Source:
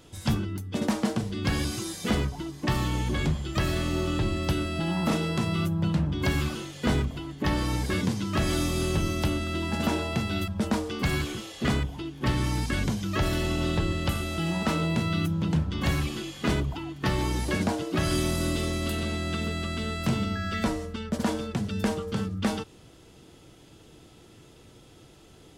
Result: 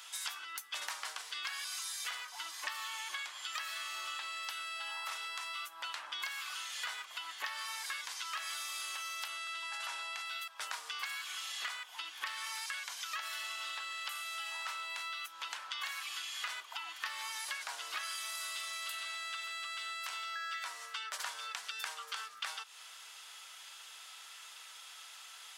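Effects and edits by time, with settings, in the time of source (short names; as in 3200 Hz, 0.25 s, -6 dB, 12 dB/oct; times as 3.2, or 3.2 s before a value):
9.28–10.26 steep low-pass 12000 Hz 72 dB/oct
whole clip: HPF 1100 Hz 24 dB/oct; compressor 12:1, threshold -46 dBFS; gain +8.5 dB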